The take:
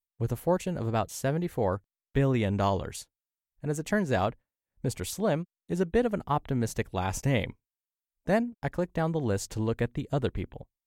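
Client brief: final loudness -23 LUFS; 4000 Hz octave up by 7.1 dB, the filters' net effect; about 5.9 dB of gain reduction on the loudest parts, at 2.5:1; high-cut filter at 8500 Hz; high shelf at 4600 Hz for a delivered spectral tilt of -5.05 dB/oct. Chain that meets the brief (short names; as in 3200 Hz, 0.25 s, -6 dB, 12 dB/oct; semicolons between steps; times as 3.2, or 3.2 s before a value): LPF 8500 Hz; bell 4000 Hz +7 dB; high shelf 4600 Hz +4.5 dB; compressor 2.5:1, threshold -29 dBFS; gain +11 dB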